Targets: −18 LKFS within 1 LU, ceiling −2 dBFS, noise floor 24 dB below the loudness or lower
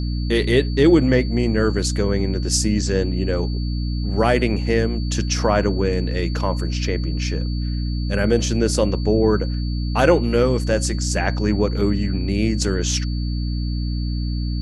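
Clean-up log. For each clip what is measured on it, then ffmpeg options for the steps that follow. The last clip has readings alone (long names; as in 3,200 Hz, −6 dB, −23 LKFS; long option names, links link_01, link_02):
mains hum 60 Hz; hum harmonics up to 300 Hz; level of the hum −21 dBFS; interfering tone 4,500 Hz; level of the tone −38 dBFS; integrated loudness −20.5 LKFS; sample peak −2.0 dBFS; target loudness −18.0 LKFS
→ -af "bandreject=frequency=60:width_type=h:width=4,bandreject=frequency=120:width_type=h:width=4,bandreject=frequency=180:width_type=h:width=4,bandreject=frequency=240:width_type=h:width=4,bandreject=frequency=300:width_type=h:width=4"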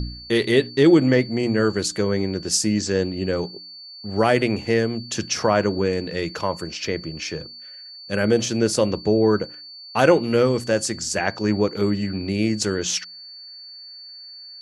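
mains hum none found; interfering tone 4,500 Hz; level of the tone −38 dBFS
→ -af "bandreject=frequency=4500:width=30"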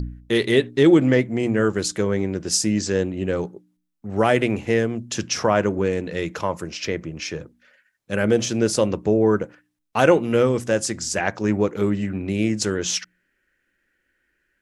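interfering tone none found; integrated loudness −21.5 LKFS; sample peak −2.5 dBFS; target loudness −18.0 LKFS
→ -af "volume=3.5dB,alimiter=limit=-2dB:level=0:latency=1"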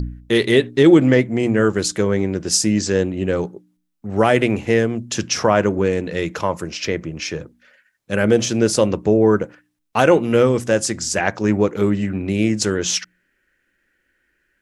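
integrated loudness −18.5 LKFS; sample peak −2.0 dBFS; background noise floor −69 dBFS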